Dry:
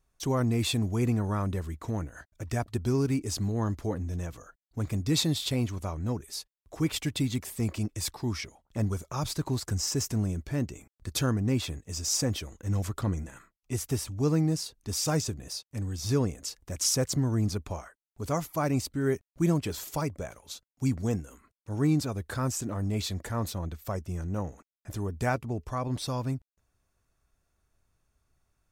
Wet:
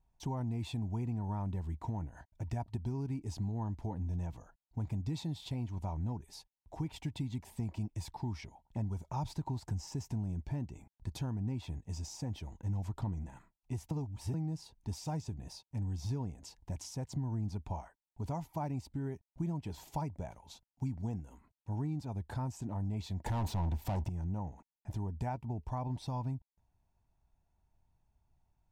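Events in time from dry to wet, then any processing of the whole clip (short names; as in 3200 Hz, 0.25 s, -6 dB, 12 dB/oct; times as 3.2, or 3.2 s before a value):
13.91–14.34 reverse
23.26–24.09 sample leveller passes 5
whole clip: bell 1100 Hz -9 dB 0.28 oct; compressor 4:1, threshold -33 dBFS; EQ curve 180 Hz 0 dB, 510 Hz -10 dB, 940 Hz +7 dB, 1300 Hz -12 dB, 2700 Hz -9 dB, 14000 Hz -18 dB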